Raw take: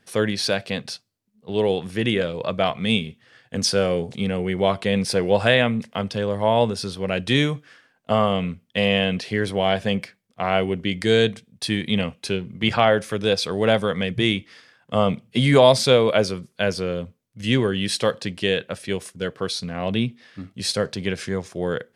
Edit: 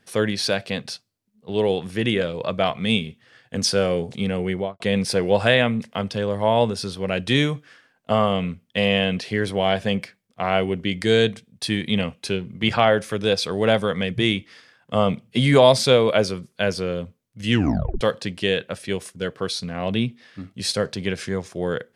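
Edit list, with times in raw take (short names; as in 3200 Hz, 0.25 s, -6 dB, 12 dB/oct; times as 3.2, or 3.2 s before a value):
4.49–4.8 studio fade out
17.5 tape stop 0.51 s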